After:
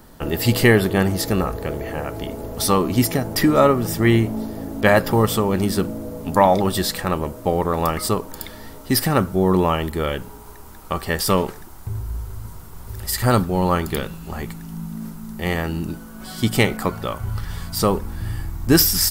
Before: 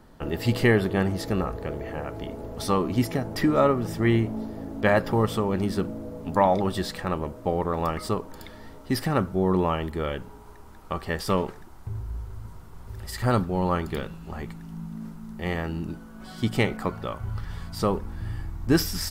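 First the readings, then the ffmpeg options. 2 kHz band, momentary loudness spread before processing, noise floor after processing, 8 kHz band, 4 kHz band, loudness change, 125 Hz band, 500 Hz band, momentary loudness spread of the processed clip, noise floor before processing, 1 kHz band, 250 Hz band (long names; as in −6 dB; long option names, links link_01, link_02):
+7.0 dB, 16 LU, −39 dBFS, +14.0 dB, +10.0 dB, +6.5 dB, +5.5 dB, +5.5 dB, 16 LU, −45 dBFS, +6.0 dB, +5.5 dB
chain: -af "aemphasis=mode=production:type=50kf,volume=5.5dB"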